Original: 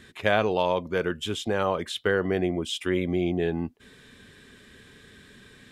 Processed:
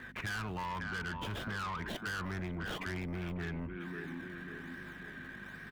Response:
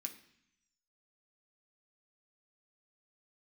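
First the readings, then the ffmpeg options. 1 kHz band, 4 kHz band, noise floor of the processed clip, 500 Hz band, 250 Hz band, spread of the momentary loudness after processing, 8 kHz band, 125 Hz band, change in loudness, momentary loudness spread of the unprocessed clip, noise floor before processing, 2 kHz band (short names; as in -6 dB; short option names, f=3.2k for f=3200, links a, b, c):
-10.0 dB, -12.0 dB, -49 dBFS, -20.5 dB, -12.0 dB, 8 LU, -10.0 dB, -6.5 dB, -13.5 dB, 5 LU, -54 dBFS, -6.5 dB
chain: -filter_complex "[0:a]firequalizer=gain_entry='entry(120,0);entry(610,-28);entry(950,-5)':delay=0.05:min_phase=1,aeval=exprs='val(0)+0.00316*(sin(2*PI*50*n/s)+sin(2*PI*2*50*n/s)/2+sin(2*PI*3*50*n/s)/3+sin(2*PI*4*50*n/s)/4+sin(2*PI*5*50*n/s)/5)':c=same,equalizer=f=1.5k:t=o:w=0.85:g=8,acrossover=split=170|3000[a][b][c];[a]agate=range=-18dB:threshold=-46dB:ratio=16:detection=peak[d];[b]asplit=2[e][f];[f]adelay=546,lowpass=f=1.9k:p=1,volume=-10.5dB,asplit=2[g][h];[h]adelay=546,lowpass=f=1.9k:p=1,volume=0.51,asplit=2[i][j];[j]adelay=546,lowpass=f=1.9k:p=1,volume=0.51,asplit=2[k][l];[l]adelay=546,lowpass=f=1.9k:p=1,volume=0.51,asplit=2[m][n];[n]adelay=546,lowpass=f=1.9k:p=1,volume=0.51,asplit=2[o][p];[p]adelay=546,lowpass=f=1.9k:p=1,volume=0.51[q];[e][g][i][k][m][o][q]amix=inputs=7:normalize=0[r];[c]acrusher=samples=24:mix=1:aa=0.000001:lfo=1:lforange=24:lforate=1.2[s];[d][r][s]amix=inputs=3:normalize=0,asoftclip=type=tanh:threshold=-35dB,acompressor=threshold=-43dB:ratio=6,volume=6dB"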